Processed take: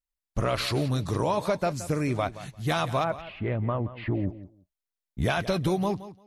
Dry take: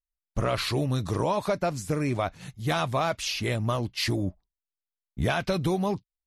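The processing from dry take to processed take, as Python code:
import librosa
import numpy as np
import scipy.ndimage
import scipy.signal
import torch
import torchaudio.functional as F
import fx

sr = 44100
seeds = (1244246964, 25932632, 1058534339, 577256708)

y = fx.gaussian_blur(x, sr, sigma=4.2, at=(3.03, 4.28), fade=0.02)
y = fx.echo_feedback(y, sr, ms=173, feedback_pct=16, wet_db=-15)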